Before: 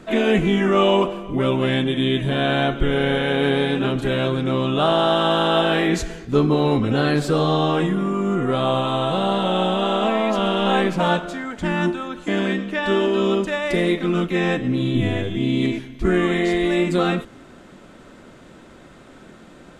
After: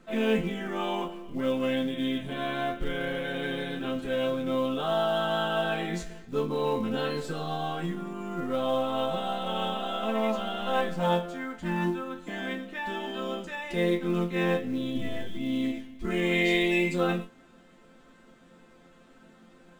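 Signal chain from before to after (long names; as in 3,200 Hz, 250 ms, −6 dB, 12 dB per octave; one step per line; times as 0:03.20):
0:16.10–0:16.94: high shelf with overshoot 1,900 Hz +6 dB, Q 3
resonators tuned to a chord F3 major, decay 0.21 s
in parallel at −9.5 dB: floating-point word with a short mantissa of 2 bits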